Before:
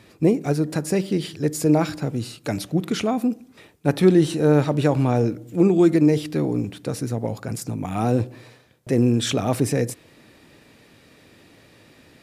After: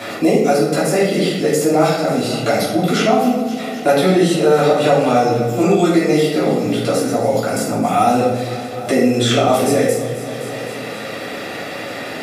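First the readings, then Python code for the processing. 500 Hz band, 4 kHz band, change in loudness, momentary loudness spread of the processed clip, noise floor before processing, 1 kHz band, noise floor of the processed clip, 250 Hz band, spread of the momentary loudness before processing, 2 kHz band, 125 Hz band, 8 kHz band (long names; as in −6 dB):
+8.5 dB, +10.0 dB, +5.5 dB, 13 LU, −54 dBFS, +13.5 dB, −28 dBFS, +3.5 dB, 12 LU, +11.5 dB, +0.5 dB, +8.0 dB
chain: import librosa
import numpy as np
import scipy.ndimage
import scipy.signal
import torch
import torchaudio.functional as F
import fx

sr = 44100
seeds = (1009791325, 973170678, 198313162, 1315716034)

y = scipy.signal.sosfilt(scipy.signal.butter(2, 310.0, 'highpass', fs=sr, output='sos'), x)
y = y + 0.47 * np.pad(y, (int(1.5 * sr / 1000.0), 0))[:len(y)]
y = fx.echo_feedback(y, sr, ms=258, feedback_pct=52, wet_db=-17)
y = fx.room_shoebox(y, sr, seeds[0], volume_m3=190.0, walls='mixed', distance_m=3.1)
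y = fx.band_squash(y, sr, depth_pct=70)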